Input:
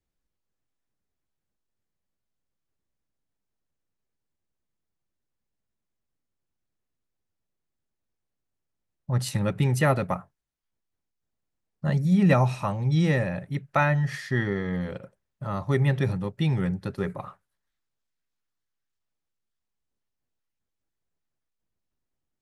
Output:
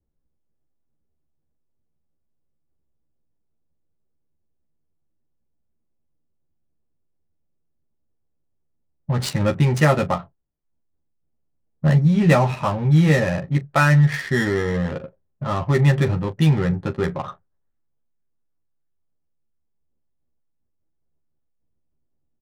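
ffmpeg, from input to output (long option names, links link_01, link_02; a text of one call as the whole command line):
ffmpeg -i in.wav -filter_complex "[0:a]equalizer=frequency=9500:width=0.34:gain=5.5,asplit=2[link_01][link_02];[link_02]alimiter=limit=-20dB:level=0:latency=1,volume=1.5dB[link_03];[link_01][link_03]amix=inputs=2:normalize=0,adynamicsmooth=sensitivity=3.5:basefreq=700,aecho=1:1:13|41:0.668|0.158" out.wav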